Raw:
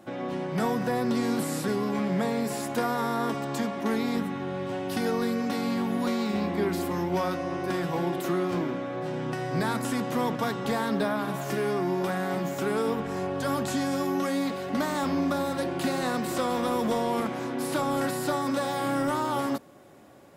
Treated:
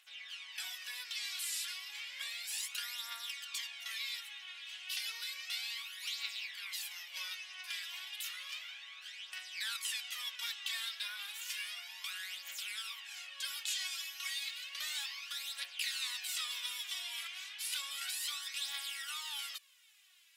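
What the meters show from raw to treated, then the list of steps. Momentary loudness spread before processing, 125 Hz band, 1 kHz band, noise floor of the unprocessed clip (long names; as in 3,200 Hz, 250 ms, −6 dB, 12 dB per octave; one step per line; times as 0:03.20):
4 LU, below −40 dB, −24.5 dB, −34 dBFS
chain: four-pole ladder high-pass 2,400 Hz, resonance 45%
phase shifter 0.32 Hz, delay 3.1 ms, feedback 59%
level +5.5 dB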